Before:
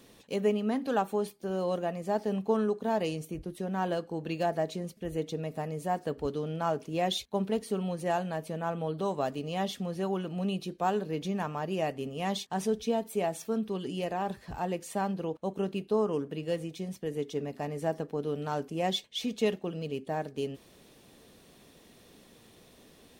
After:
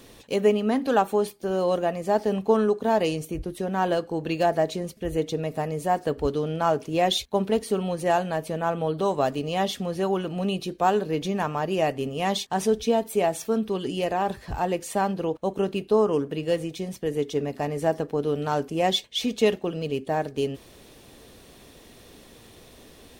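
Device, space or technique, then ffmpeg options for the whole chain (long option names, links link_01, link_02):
low shelf boost with a cut just above: -af "lowshelf=frequency=100:gain=6.5,equalizer=frequency=180:width_type=o:width=0.72:gain=-5.5,volume=7.5dB"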